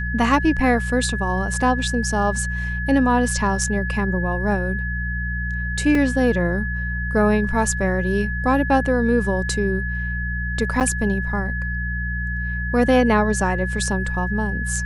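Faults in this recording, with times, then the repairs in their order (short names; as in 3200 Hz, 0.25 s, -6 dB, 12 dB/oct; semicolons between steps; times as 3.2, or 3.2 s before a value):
hum 60 Hz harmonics 3 -26 dBFS
tone 1700 Hz -27 dBFS
5.95 gap 2.4 ms
10.8–10.81 gap 8.8 ms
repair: notch 1700 Hz, Q 30; de-hum 60 Hz, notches 3; interpolate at 5.95, 2.4 ms; interpolate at 10.8, 8.8 ms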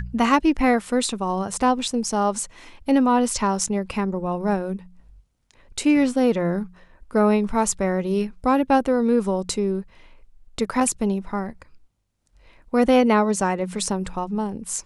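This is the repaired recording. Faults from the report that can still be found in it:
none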